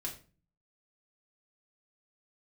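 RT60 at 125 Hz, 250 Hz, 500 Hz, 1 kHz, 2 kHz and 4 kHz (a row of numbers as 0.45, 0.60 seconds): 0.70, 0.65, 0.40, 0.35, 0.30, 0.30 seconds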